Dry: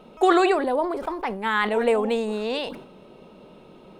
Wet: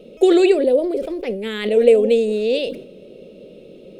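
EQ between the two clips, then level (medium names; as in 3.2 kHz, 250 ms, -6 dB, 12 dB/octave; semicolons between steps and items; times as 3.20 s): FFT filter 120 Hz 0 dB, 350 Hz +5 dB, 540 Hz +10 dB, 910 Hz -22 dB, 1.6 kHz -11 dB, 2.5 kHz +2 dB; +1.5 dB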